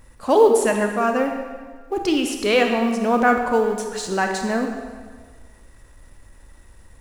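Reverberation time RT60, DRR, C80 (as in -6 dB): 1.6 s, 3.5 dB, 6.0 dB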